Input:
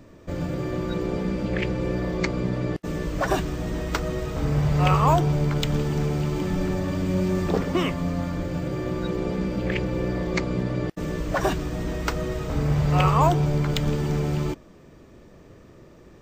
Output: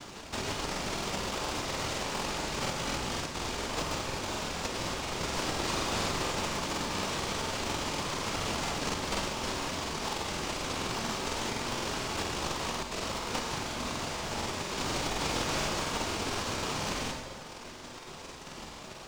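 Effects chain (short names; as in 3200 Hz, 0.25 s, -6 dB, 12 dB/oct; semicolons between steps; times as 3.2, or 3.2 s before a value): noise vocoder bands 1; Chebyshev high-pass 1000 Hz, order 6; varispeed -15%; in parallel at -3 dB: sample-and-hold 21×; on the sum: tilt shelf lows +4 dB, about 1300 Hz; on a send at -3 dB: reverb RT60 0.80 s, pre-delay 23 ms; on the sum: compressor 3:1, threshold -38 dBFS, peak gain reduction 18 dB; crackling interface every 0.24 s, samples 2048, repeat, from 0.7; gain +2.5 dB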